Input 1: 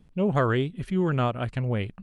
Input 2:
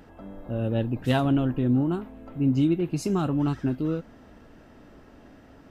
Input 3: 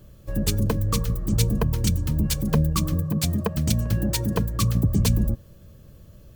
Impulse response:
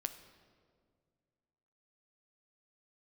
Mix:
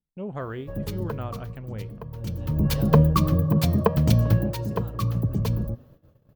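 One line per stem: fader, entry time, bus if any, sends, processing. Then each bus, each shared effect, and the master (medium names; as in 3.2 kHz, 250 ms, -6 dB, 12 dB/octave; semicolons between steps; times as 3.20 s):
-8.5 dB, 0.00 s, no send, no echo send, treble shelf 2.1 kHz -8 dB
-18.5 dB, 1.65 s, no send, echo send -15 dB, none
4.32 s 0 dB -> 4.55 s -8 dB, 0.40 s, no send, no echo send, graphic EQ 125/500/1000/8000 Hz +8/+7/+7/-11 dB; auto duck -20 dB, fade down 1.75 s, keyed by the first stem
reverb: none
echo: feedback delay 485 ms, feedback 38%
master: gate -48 dBFS, range -22 dB; bass shelf 170 Hz -3 dB; de-hum 239.7 Hz, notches 25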